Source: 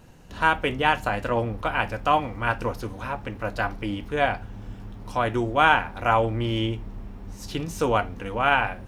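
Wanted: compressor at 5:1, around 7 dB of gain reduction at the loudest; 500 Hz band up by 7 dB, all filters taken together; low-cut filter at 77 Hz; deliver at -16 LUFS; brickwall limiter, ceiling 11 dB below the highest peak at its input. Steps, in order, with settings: HPF 77 Hz; bell 500 Hz +8.5 dB; compressor 5:1, threshold -19 dBFS; gain +14 dB; limiter -4.5 dBFS

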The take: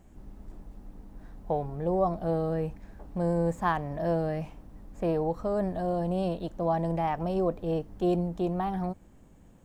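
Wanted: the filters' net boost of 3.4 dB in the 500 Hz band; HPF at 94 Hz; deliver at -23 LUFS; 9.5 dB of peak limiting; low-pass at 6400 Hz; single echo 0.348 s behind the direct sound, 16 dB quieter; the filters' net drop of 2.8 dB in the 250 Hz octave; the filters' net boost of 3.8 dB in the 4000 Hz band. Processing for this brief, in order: HPF 94 Hz; LPF 6400 Hz; bell 250 Hz -8 dB; bell 500 Hz +6 dB; bell 4000 Hz +5.5 dB; limiter -21.5 dBFS; echo 0.348 s -16 dB; gain +7.5 dB

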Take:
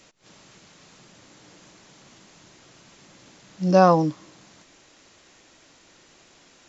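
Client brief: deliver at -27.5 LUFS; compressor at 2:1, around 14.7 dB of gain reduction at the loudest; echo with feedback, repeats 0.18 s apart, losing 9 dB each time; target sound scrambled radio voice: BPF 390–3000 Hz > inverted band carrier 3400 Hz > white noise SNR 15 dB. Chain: compressor 2:1, threshold -37 dBFS; BPF 390–3000 Hz; feedback echo 0.18 s, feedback 35%, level -9 dB; inverted band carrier 3400 Hz; white noise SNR 15 dB; gain +5 dB

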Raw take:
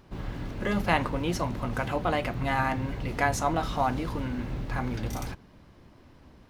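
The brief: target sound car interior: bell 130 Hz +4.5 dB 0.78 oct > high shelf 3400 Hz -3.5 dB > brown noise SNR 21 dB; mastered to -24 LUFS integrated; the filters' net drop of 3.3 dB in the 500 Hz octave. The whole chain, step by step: bell 130 Hz +4.5 dB 0.78 oct; bell 500 Hz -4.5 dB; high shelf 3400 Hz -3.5 dB; brown noise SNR 21 dB; gain +6 dB

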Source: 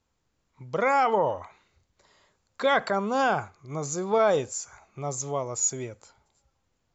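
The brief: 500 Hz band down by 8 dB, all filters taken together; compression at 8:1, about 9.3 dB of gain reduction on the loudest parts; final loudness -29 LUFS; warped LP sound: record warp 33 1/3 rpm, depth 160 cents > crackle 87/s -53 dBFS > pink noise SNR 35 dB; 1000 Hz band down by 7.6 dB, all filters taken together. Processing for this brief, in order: bell 500 Hz -7.5 dB; bell 1000 Hz -7.5 dB; compressor 8:1, threshold -31 dBFS; record warp 33 1/3 rpm, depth 160 cents; crackle 87/s -53 dBFS; pink noise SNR 35 dB; gain +7 dB

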